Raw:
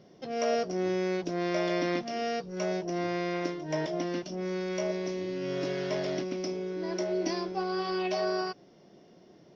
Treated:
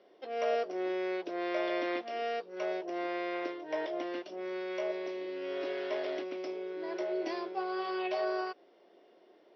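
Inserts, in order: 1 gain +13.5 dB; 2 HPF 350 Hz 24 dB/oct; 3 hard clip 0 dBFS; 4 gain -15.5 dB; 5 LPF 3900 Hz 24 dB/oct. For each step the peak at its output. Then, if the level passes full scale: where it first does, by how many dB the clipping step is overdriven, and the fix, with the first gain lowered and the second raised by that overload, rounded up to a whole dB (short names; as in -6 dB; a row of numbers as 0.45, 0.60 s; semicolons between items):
-3.5, -5.0, -5.0, -20.5, -21.0 dBFS; no overload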